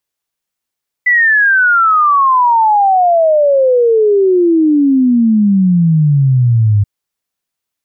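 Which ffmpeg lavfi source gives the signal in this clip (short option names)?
-f lavfi -i "aevalsrc='0.473*clip(min(t,5.78-t)/0.01,0,1)*sin(2*PI*2000*5.78/log(100/2000)*(exp(log(100/2000)*t/5.78)-1))':d=5.78:s=44100"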